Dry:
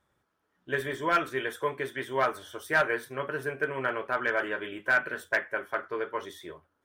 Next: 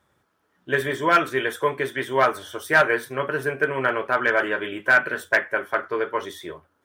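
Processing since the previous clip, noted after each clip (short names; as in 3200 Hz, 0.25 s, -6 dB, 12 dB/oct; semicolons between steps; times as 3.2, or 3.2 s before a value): HPF 54 Hz; gain +7.5 dB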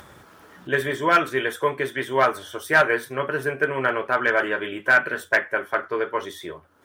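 upward compressor, threshold -31 dBFS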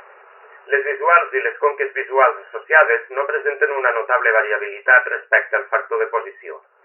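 brick-wall FIR band-pass 380–2900 Hz; gain +5.5 dB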